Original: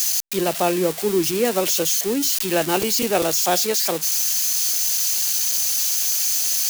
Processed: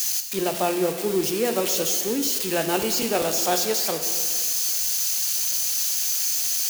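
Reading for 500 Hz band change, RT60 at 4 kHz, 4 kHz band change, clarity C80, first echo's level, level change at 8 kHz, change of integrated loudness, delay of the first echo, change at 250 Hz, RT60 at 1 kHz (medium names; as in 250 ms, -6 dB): -3.0 dB, 1.7 s, -3.0 dB, 9.0 dB, no echo, -3.0 dB, -3.0 dB, no echo, -3.0 dB, 1.9 s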